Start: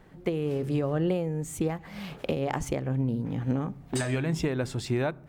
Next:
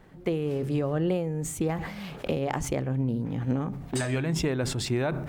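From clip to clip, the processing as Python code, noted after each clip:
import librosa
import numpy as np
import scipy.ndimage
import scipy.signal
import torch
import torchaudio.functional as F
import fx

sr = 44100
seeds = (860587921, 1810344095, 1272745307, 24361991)

y = fx.sustainer(x, sr, db_per_s=53.0)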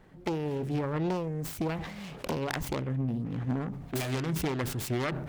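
y = fx.self_delay(x, sr, depth_ms=0.65)
y = F.gain(torch.from_numpy(y), -3.0).numpy()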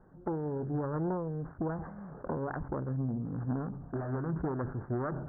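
y = scipy.signal.sosfilt(scipy.signal.butter(12, 1600.0, 'lowpass', fs=sr, output='sos'), x)
y = F.gain(torch.from_numpy(y), -2.5).numpy()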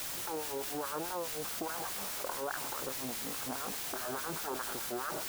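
y = fx.filter_lfo_highpass(x, sr, shape='sine', hz=4.8, low_hz=450.0, high_hz=1800.0, q=0.93)
y = fx.quant_dither(y, sr, seeds[0], bits=8, dither='triangular')
y = fx.env_flatten(y, sr, amount_pct=70)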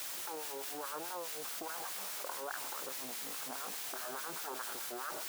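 y = fx.highpass(x, sr, hz=540.0, slope=6)
y = F.gain(torch.from_numpy(y), -2.5).numpy()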